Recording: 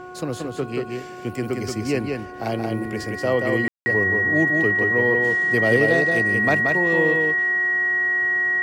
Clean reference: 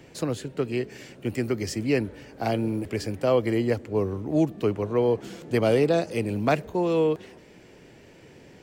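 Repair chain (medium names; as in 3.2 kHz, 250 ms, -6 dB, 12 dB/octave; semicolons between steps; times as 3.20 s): de-hum 364.6 Hz, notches 4; band-stop 1.9 kHz, Q 30; room tone fill 3.68–3.86 s; inverse comb 179 ms -4 dB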